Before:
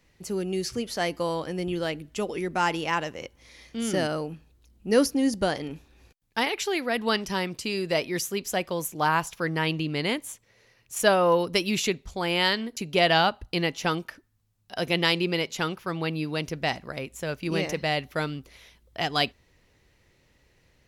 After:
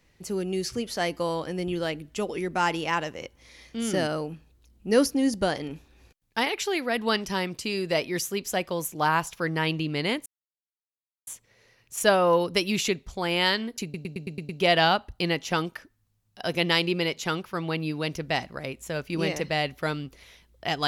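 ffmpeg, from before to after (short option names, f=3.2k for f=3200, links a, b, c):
-filter_complex "[0:a]asplit=8[a][b][c][d][e][f][g][h];[a]atrim=end=10.26,asetpts=PTS-STARTPTS,afade=t=out:st=10.256:d=0.004:c=hsin,apad=pad_dur=1.01[i];[b]atrim=start=10.26:end=12.932,asetpts=PTS-STARTPTS,afade=t=in:d=0.004:c=hsin[j];[c]atrim=start=12.818:end=12.932[k];[d]atrim=start=12.818:end=12.932[l];[e]atrim=start=12.818:end=12.932[m];[f]atrim=start=12.818:end=12.932[n];[g]atrim=start=12.818:end=12.932[o];[h]atrim=start=12.818[p];[i][j]concat=n=2:v=0:a=1[q];[q][k]acrossfade=d=0.004:c1=hsin:c2=hsin[r];[r][l]acrossfade=d=0.004:c1=hsin:c2=hsin[s];[s][m]acrossfade=d=0.004:c1=hsin:c2=hsin[t];[t][n]acrossfade=d=0.004:c1=hsin:c2=hsin[u];[u][o]acrossfade=d=0.004:c1=hsin:c2=hsin[v];[v][p]acrossfade=d=0.004:c1=hsin:c2=hsin"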